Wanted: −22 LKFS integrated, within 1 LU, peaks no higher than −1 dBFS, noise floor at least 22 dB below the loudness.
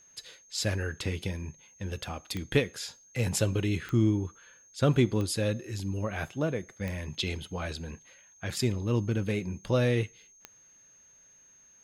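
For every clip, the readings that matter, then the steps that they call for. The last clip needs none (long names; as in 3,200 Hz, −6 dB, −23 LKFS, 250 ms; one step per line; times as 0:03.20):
number of clicks 5; interfering tone 6,400 Hz; level of the tone −56 dBFS; integrated loudness −31.0 LKFS; sample peak −12.5 dBFS; target loudness −22.0 LKFS
→ click removal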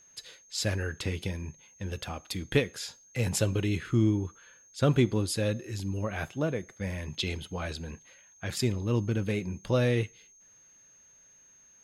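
number of clicks 0; interfering tone 6,400 Hz; level of the tone −56 dBFS
→ notch filter 6,400 Hz, Q 30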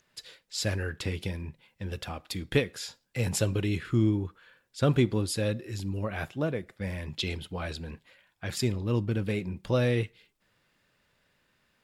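interfering tone none found; integrated loudness −31.0 LKFS; sample peak −12.5 dBFS; target loudness −22.0 LKFS
→ level +9 dB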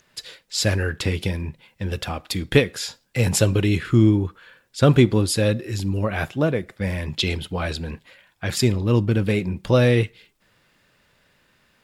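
integrated loudness −22.0 LKFS; sample peak −3.5 dBFS; background noise floor −63 dBFS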